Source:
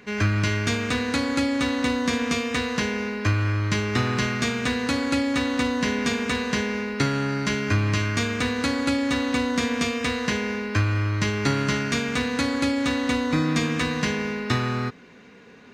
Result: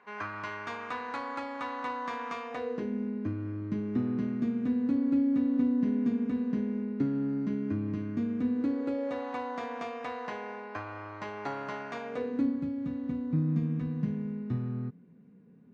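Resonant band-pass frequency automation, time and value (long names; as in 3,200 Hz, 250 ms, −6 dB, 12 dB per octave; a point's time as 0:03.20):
resonant band-pass, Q 2.8
0:02.44 970 Hz
0:02.92 250 Hz
0:08.52 250 Hz
0:09.32 780 Hz
0:12.02 780 Hz
0:12.61 170 Hz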